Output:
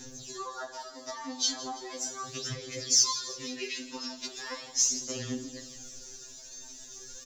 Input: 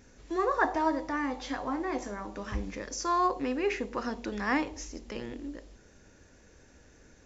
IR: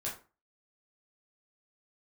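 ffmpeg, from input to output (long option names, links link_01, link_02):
-filter_complex "[0:a]asettb=1/sr,asplit=3[link_01][link_02][link_03];[link_01]atrim=end=2.274[link_04];[link_02]atrim=start=2.27:end=3.86,asetpts=PTS-STARTPTS,afade=type=in:duration=0.004:curve=qsin,afade=type=out:start_time=1.586:duration=0.004:curve=qsin,equalizer=frequency=125:width_type=o:width=1:gain=6,equalizer=frequency=1000:width_type=o:width=1:gain=-12,equalizer=frequency=2000:width_type=o:width=1:gain=10,equalizer=frequency=4000:width_type=o:width=1:gain=4[link_05];[link_03]atrim=start=3.856[link_06];[link_04][link_05]acrossfade=duration=0.004:curve1=hsin:curve2=qsin[link_07];[link_07][link_06]acrossfade=duration=0.004:curve1=qsin:curve2=hsin,acompressor=threshold=-38dB:ratio=12,aexciter=amount=7.2:drive=5.6:freq=3200,aphaser=in_gain=1:out_gain=1:delay=3.3:decay=0.69:speed=0.38:type=sinusoidal,aecho=1:1:166|332|498|664|830|996:0.168|0.0974|0.0565|0.0328|0.019|0.011,asplit=2[link_08][link_09];[1:a]atrim=start_sample=2205,adelay=13[link_10];[link_09][link_10]afir=irnorm=-1:irlink=0,volume=-15dB[link_11];[link_08][link_11]amix=inputs=2:normalize=0,afftfilt=real='re*2.45*eq(mod(b,6),0)':imag='im*2.45*eq(mod(b,6),0)':win_size=2048:overlap=0.75,volume=1.5dB"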